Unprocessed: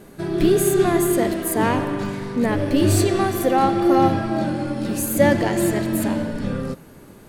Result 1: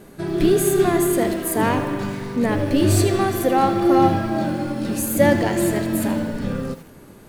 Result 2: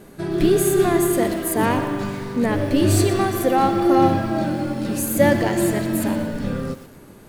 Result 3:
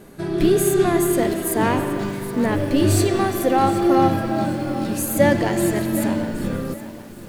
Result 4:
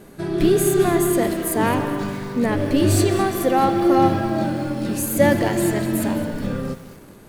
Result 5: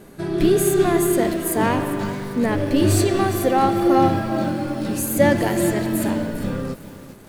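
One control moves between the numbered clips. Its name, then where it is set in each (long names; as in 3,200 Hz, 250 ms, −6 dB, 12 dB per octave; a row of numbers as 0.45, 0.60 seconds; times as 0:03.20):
feedback echo at a low word length, delay time: 80, 120, 771, 212, 400 milliseconds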